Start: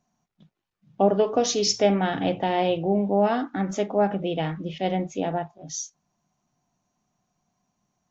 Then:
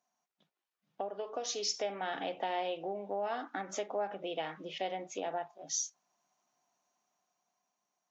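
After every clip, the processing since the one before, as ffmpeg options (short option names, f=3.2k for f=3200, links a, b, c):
-af "acompressor=threshold=-29dB:ratio=5,highpass=500,dynaudnorm=f=320:g=9:m=5.5dB,volume=-6dB"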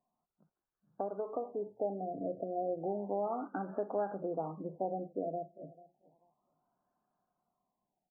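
-filter_complex "[0:a]aemphasis=mode=reproduction:type=riaa,asplit=2[a][b];[b]adelay=439,lowpass=f=2k:p=1,volume=-21dB,asplit=2[c][d];[d]adelay=439,lowpass=f=2k:p=1,volume=0.21[e];[a][c][e]amix=inputs=3:normalize=0,afftfilt=real='re*lt(b*sr/1024,700*pow(1800/700,0.5+0.5*sin(2*PI*0.32*pts/sr)))':imag='im*lt(b*sr/1024,700*pow(1800/700,0.5+0.5*sin(2*PI*0.32*pts/sr)))':win_size=1024:overlap=0.75,volume=-1dB"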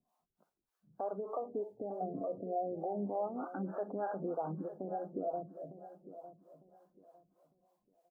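-filter_complex "[0:a]alimiter=level_in=6.5dB:limit=-24dB:level=0:latency=1:release=115,volume=-6.5dB,acrossover=split=430[a][b];[a]aeval=exprs='val(0)*(1-1/2+1/2*cos(2*PI*3.3*n/s))':c=same[c];[b]aeval=exprs='val(0)*(1-1/2-1/2*cos(2*PI*3.3*n/s))':c=same[d];[c][d]amix=inputs=2:normalize=0,aecho=1:1:904|1808|2712:0.211|0.055|0.0143,volume=7dB"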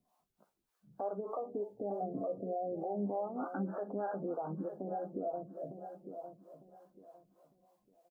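-filter_complex "[0:a]alimiter=level_in=9.5dB:limit=-24dB:level=0:latency=1:release=323,volume=-9.5dB,asplit=2[a][b];[b]adelay=15,volume=-10.5dB[c];[a][c]amix=inputs=2:normalize=0,volume=4dB"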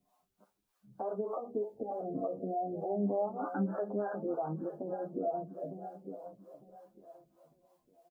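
-filter_complex "[0:a]asplit=2[a][b];[b]adelay=8,afreqshift=0.35[c];[a][c]amix=inputs=2:normalize=1,volume=5.5dB"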